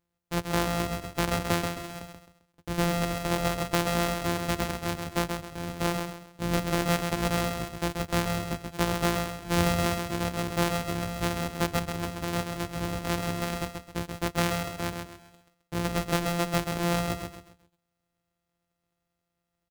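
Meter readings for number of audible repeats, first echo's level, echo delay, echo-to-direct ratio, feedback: 4, −5.5 dB, 132 ms, −5.0 dB, 33%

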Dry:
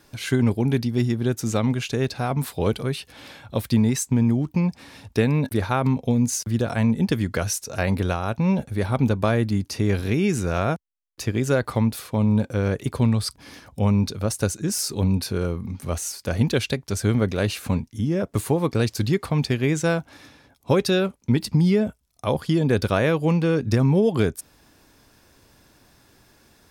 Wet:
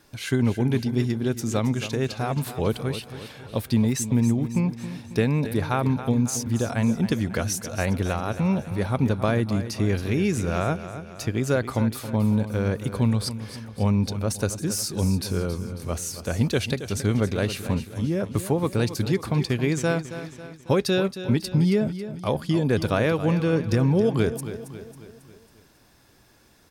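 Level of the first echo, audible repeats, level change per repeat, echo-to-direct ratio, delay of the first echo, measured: −12.0 dB, 4, −6.0 dB, −10.5 dB, 273 ms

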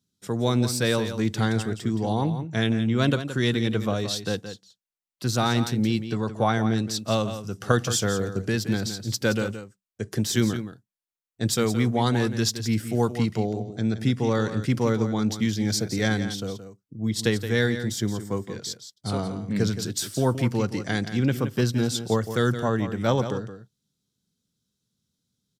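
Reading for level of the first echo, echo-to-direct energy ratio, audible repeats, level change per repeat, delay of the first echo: −10.5 dB, −10.5 dB, 1, repeats not evenly spaced, 171 ms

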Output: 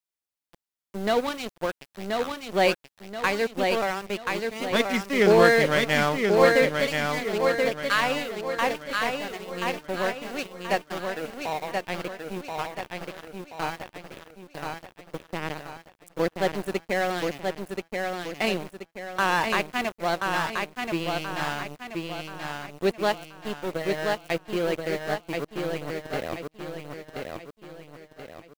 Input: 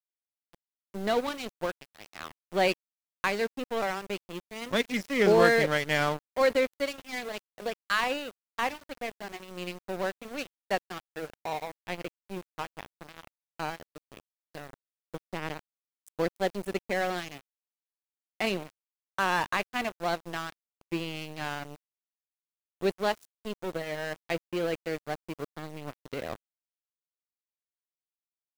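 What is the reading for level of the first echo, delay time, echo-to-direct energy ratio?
−4.0 dB, 1,030 ms, −3.0 dB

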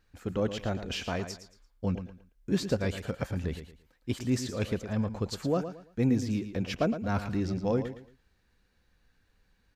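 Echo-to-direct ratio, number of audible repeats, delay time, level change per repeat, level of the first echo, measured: −10.0 dB, 3, 113 ms, −11.0 dB, −10.5 dB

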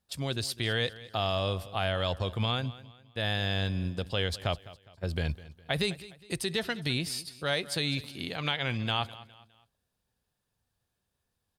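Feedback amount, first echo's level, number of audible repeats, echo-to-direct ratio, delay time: 38%, −18.0 dB, 3, −17.5 dB, 205 ms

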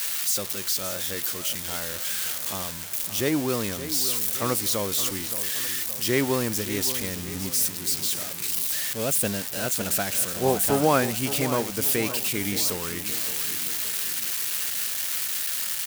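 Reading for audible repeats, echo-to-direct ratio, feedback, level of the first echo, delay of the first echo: 4, −11.0 dB, 50%, −12.0 dB, 570 ms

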